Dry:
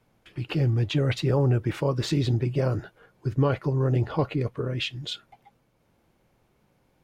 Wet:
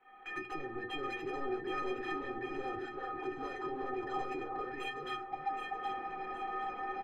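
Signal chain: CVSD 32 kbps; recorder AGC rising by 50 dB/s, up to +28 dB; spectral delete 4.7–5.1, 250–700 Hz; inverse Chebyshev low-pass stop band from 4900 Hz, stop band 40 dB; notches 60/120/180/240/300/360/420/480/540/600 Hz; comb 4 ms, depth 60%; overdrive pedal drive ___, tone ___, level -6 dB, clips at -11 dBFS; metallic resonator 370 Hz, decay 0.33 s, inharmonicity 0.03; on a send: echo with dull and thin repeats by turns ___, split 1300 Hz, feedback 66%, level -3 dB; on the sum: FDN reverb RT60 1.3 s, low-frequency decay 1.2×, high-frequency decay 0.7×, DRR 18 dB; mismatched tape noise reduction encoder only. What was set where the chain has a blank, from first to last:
28 dB, 1100 Hz, 0.385 s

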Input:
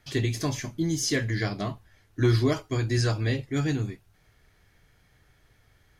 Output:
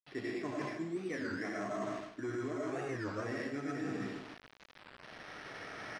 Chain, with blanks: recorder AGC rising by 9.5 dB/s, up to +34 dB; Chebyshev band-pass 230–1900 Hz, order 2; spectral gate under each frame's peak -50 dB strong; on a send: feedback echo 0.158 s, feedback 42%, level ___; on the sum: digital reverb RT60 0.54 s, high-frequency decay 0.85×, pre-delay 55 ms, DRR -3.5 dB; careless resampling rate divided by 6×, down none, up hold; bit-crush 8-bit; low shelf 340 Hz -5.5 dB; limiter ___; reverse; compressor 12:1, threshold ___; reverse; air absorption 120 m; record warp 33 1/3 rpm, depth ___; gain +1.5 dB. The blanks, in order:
-12 dB, -18 dBFS, -36 dBFS, 250 cents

